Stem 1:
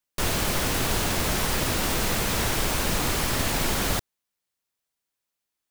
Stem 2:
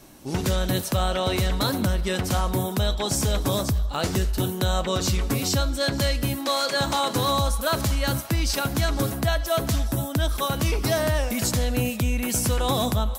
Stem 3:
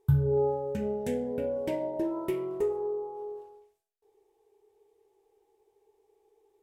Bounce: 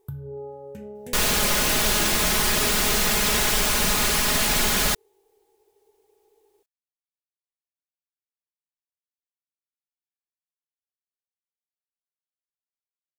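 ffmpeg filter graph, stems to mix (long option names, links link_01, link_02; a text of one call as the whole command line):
ffmpeg -i stem1.wav -i stem2.wav -i stem3.wav -filter_complex "[0:a]tiltshelf=frequency=1100:gain=-3.5,aecho=1:1:4.8:0.62,acontrast=34,adelay=950,volume=-3.5dB[link_01];[2:a]highshelf=frequency=10000:gain=10,acompressor=threshold=-48dB:ratio=2,volume=3dB[link_02];[link_01][link_02]amix=inputs=2:normalize=0" out.wav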